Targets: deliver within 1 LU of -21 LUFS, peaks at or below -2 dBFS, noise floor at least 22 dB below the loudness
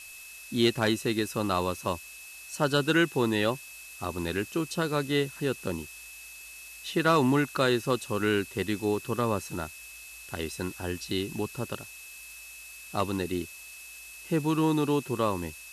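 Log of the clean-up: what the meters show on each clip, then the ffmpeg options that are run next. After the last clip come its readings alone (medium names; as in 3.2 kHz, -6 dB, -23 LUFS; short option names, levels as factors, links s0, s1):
steady tone 2.6 kHz; tone level -46 dBFS; noise floor -46 dBFS; noise floor target -51 dBFS; loudness -29.0 LUFS; peak level -12.5 dBFS; loudness target -21.0 LUFS
-> -af "bandreject=f=2600:w=30"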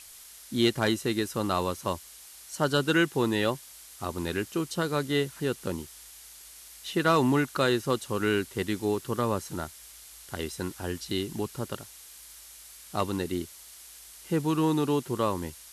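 steady tone not found; noise floor -49 dBFS; noise floor target -51 dBFS
-> -af "afftdn=nr=6:nf=-49"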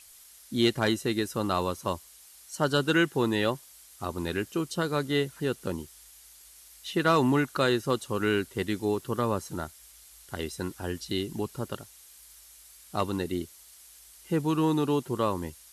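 noise floor -53 dBFS; loudness -29.0 LUFS; peak level -12.0 dBFS; loudness target -21.0 LUFS
-> -af "volume=2.51"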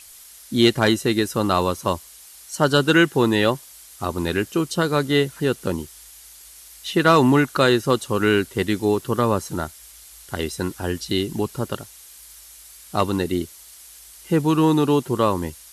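loudness -21.0 LUFS; peak level -4.0 dBFS; noise floor -45 dBFS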